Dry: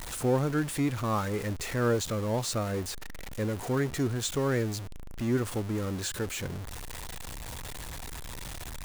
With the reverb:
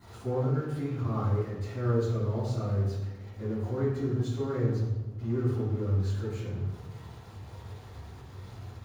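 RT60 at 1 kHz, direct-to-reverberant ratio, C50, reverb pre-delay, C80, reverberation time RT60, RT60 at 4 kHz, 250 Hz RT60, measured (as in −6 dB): 1.0 s, −15.0 dB, 1.0 dB, 3 ms, 4.0 dB, 1.1 s, 0.80 s, 1.4 s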